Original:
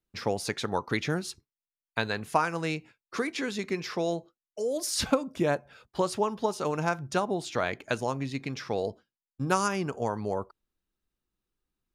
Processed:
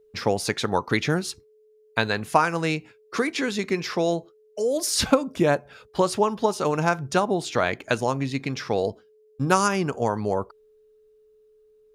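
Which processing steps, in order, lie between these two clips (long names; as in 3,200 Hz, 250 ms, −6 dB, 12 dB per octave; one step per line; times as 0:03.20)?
steady tone 430 Hz −61 dBFS
level +6 dB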